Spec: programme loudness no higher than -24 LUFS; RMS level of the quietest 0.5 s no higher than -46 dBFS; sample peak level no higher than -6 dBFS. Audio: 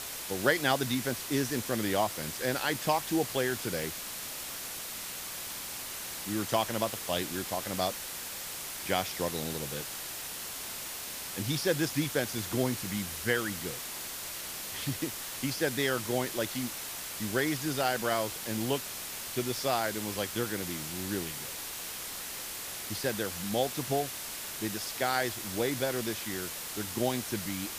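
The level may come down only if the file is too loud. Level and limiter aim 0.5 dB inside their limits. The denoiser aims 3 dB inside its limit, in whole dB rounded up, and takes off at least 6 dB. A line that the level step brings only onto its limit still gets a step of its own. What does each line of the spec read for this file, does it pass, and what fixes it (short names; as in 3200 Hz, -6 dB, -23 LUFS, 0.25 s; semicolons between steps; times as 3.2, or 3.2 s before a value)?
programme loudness -32.5 LUFS: OK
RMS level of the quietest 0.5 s -40 dBFS: fail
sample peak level -10.5 dBFS: OK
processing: denoiser 9 dB, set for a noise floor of -40 dBFS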